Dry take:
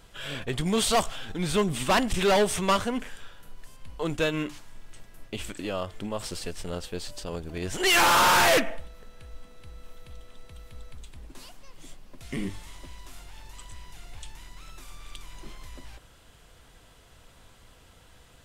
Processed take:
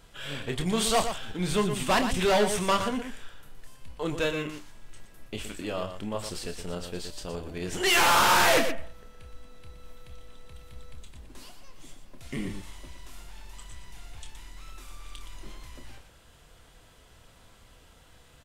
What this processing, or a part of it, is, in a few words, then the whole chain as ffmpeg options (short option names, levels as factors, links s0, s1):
slapback doubling: -filter_complex "[0:a]asplit=3[s0][s1][s2];[s1]adelay=28,volume=0.376[s3];[s2]adelay=119,volume=0.376[s4];[s0][s3][s4]amix=inputs=3:normalize=0,volume=0.794"